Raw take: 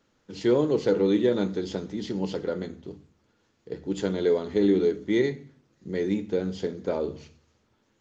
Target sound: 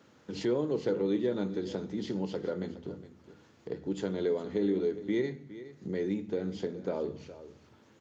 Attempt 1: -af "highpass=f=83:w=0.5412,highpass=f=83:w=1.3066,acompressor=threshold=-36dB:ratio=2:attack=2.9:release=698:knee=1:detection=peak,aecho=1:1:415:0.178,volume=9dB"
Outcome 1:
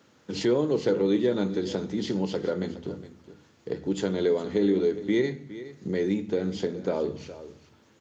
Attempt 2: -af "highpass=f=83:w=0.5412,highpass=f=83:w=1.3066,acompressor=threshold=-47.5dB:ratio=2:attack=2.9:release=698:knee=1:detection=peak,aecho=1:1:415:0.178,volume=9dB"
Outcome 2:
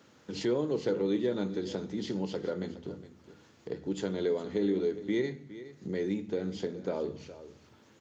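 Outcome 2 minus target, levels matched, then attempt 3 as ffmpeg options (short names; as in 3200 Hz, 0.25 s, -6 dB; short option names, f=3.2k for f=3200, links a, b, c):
4000 Hz band +3.0 dB
-af "highpass=f=83:w=0.5412,highpass=f=83:w=1.3066,highshelf=f=2.6k:g=-4.5,acompressor=threshold=-47.5dB:ratio=2:attack=2.9:release=698:knee=1:detection=peak,aecho=1:1:415:0.178,volume=9dB"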